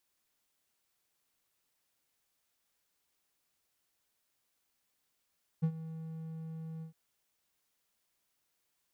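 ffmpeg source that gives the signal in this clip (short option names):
-f lavfi -i "aevalsrc='0.075*(1-4*abs(mod(161*t+0.25,1)-0.5))':d=1.309:s=44100,afade=t=in:d=0.019,afade=t=out:st=0.019:d=0.071:silence=0.168,afade=t=out:st=1.2:d=0.109"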